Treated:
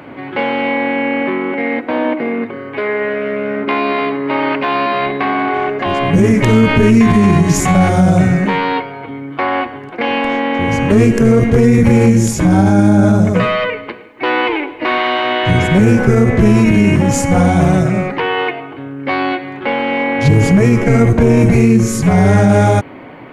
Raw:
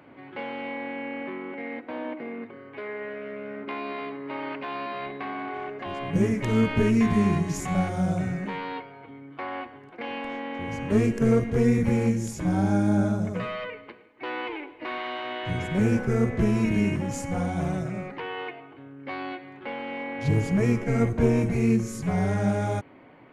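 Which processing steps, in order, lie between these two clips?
boost into a limiter +18.5 dB
level −1 dB

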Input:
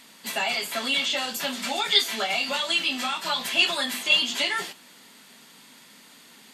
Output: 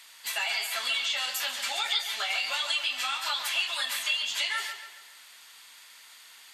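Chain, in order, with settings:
high-pass filter 1,100 Hz 12 dB per octave
downward compressor, threshold −26 dBFS, peak gain reduction 11.5 dB
on a send: feedback echo with a low-pass in the loop 140 ms, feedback 47%, low-pass 4,100 Hz, level −7.5 dB

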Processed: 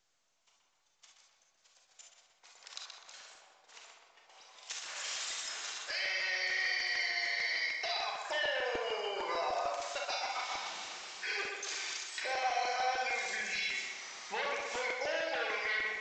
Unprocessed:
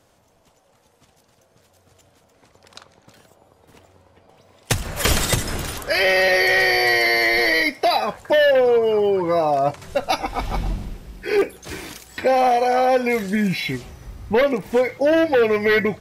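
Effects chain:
high-pass filter 790 Hz 12 dB per octave
noise gate −58 dBFS, range −25 dB
spectral tilt +3.5 dB per octave
speech leveller within 4 dB 2 s
brickwall limiter −11.5 dBFS, peak gain reduction 10 dB
downward compressor 2.5 to 1, threshold −42 dBFS, peak gain reduction 16.5 dB
feedback echo with a low-pass in the loop 126 ms, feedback 56%, low-pass 3,400 Hz, level −4 dB
convolution reverb, pre-delay 28 ms, DRR 2 dB
regular buffer underruns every 0.15 s, samples 128, repeat, from 0:00.65
level −2 dB
mu-law 128 kbit/s 16,000 Hz

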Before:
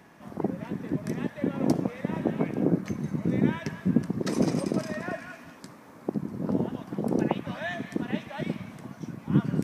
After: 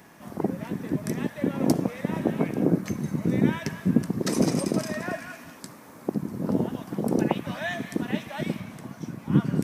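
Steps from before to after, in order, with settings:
high-shelf EQ 6,500 Hz +11 dB, from 0:08.60 +6 dB
level +2 dB

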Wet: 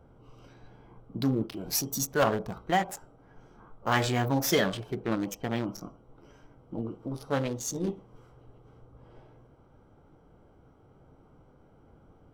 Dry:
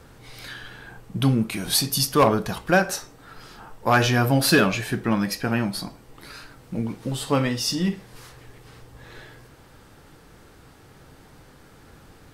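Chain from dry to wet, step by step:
adaptive Wiener filter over 25 samples
formants moved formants +4 semitones
level −7 dB

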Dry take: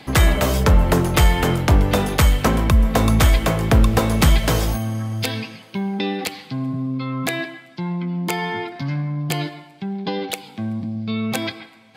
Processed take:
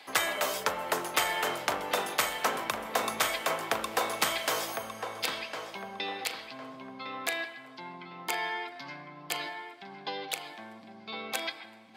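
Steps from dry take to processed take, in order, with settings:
high-pass filter 650 Hz 12 dB per octave
feedback echo with a low-pass in the loop 1,056 ms, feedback 37%, low-pass 2,600 Hz, level −7 dB
level −6.5 dB

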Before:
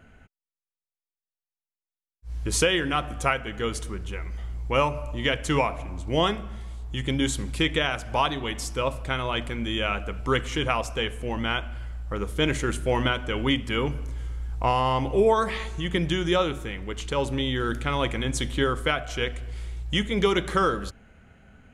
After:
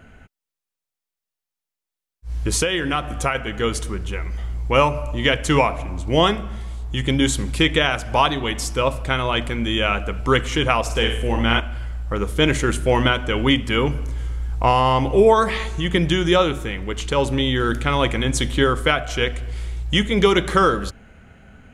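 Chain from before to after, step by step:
0:02.49–0:03.35: downward compressor 3 to 1, threshold −25 dBFS, peak gain reduction 7 dB
0:10.81–0:11.60: flutter between parallel walls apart 8.9 metres, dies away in 0.52 s
level +6.5 dB

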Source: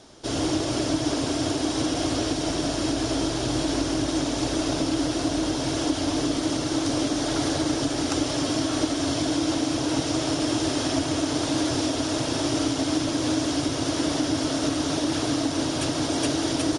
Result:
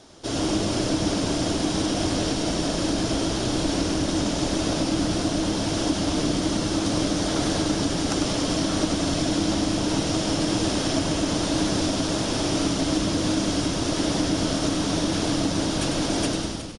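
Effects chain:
fade-out on the ending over 0.60 s
echo with shifted repeats 99 ms, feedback 56%, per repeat −110 Hz, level −6.5 dB

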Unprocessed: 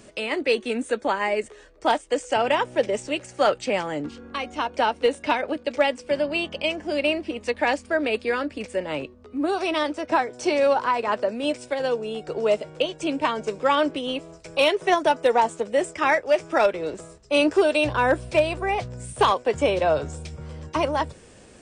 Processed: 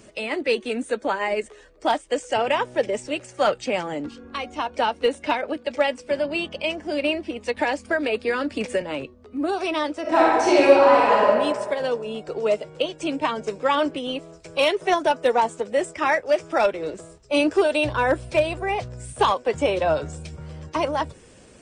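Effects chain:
spectral magnitudes quantised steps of 15 dB
0:07.57–0:08.82: multiband upward and downward compressor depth 100%
0:10.01–0:11.27: thrown reverb, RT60 1.6 s, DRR −6 dB

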